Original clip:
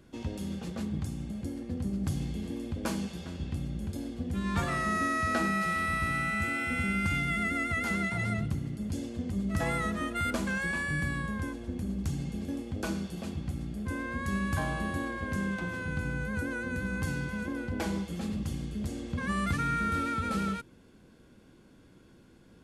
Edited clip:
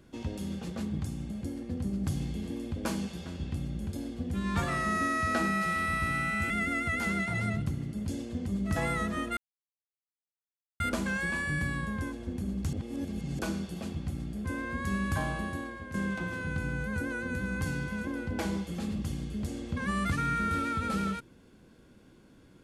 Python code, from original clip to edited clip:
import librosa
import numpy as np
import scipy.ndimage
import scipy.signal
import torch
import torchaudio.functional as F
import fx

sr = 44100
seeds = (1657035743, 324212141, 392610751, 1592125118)

y = fx.edit(x, sr, fx.cut(start_s=6.5, length_s=0.84),
    fx.insert_silence(at_s=10.21, length_s=1.43),
    fx.reverse_span(start_s=12.14, length_s=0.66),
    fx.fade_out_to(start_s=14.65, length_s=0.7, floor_db=-9.5), tone=tone)